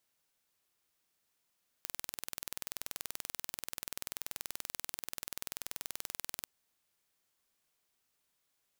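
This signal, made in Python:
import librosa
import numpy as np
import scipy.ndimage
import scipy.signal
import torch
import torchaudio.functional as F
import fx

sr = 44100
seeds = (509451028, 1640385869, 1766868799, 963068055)

y = 10.0 ** (-11.0 / 20.0) * (np.mod(np.arange(round(4.62 * sr)), round(sr / 20.7)) == 0)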